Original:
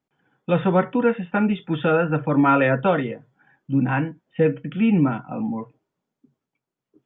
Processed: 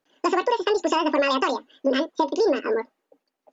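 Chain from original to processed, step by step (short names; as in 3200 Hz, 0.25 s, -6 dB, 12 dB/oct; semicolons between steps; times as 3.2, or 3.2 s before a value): compressor 5:1, threshold -21 dBFS, peak gain reduction 8.5 dB; dynamic EQ 1200 Hz, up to -5 dB, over -39 dBFS, Q 0.98; speed mistake 7.5 ips tape played at 15 ips; gain +4 dB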